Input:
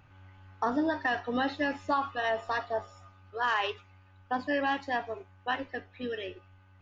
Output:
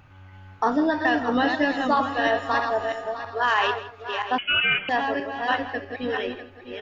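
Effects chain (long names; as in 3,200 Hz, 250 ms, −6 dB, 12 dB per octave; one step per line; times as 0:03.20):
feedback delay that plays each chunk backwards 325 ms, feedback 45%, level −5 dB
slap from a distant wall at 28 metres, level −15 dB
0:04.38–0:04.89: voice inversion scrambler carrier 3,200 Hz
level +6.5 dB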